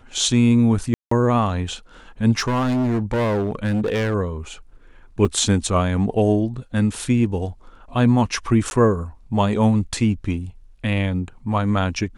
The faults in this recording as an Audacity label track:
0.940000	1.110000	dropout 174 ms
2.390000	4.150000	clipped -17.5 dBFS
5.250000	5.250000	dropout 5 ms
8.700000	8.710000	dropout 11 ms

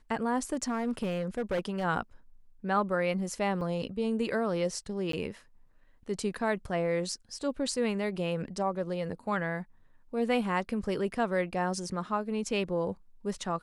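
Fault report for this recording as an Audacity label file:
0.530000	1.850000	clipped -26 dBFS
3.610000	3.610000	dropout 2.5 ms
5.120000	5.130000	dropout 13 ms

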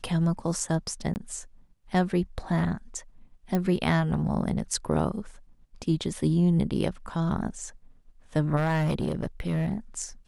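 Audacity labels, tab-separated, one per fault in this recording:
1.140000	1.160000	dropout 19 ms
3.550000	3.550000	pop -15 dBFS
8.560000	9.730000	clipped -21.5 dBFS

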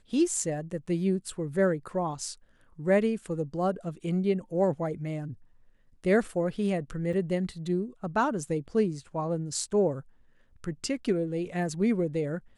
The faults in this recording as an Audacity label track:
7.130000	7.140000	dropout 5.7 ms

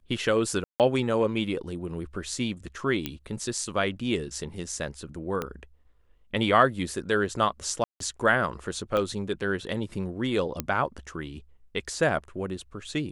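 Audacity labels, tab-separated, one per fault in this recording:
0.640000	0.800000	dropout 158 ms
3.060000	3.060000	pop -14 dBFS
5.420000	5.420000	pop -16 dBFS
7.840000	8.000000	dropout 163 ms
8.970000	8.970000	pop -16 dBFS
10.600000	10.600000	pop -10 dBFS

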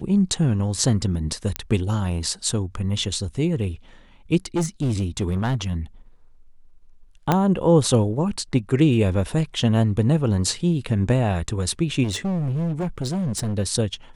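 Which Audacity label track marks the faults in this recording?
1.560000	1.560000	pop -7 dBFS
4.560000	5.560000	clipped -18 dBFS
7.320000	7.320000	pop -5 dBFS
12.030000	13.580000	clipped -21.5 dBFS

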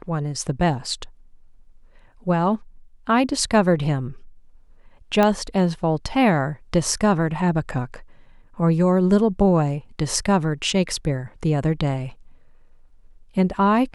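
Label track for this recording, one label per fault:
5.230000	5.230000	pop -7 dBFS

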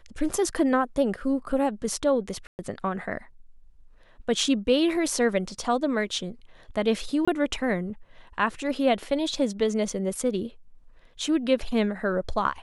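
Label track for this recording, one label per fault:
2.470000	2.590000	dropout 119 ms
7.250000	7.280000	dropout 25 ms

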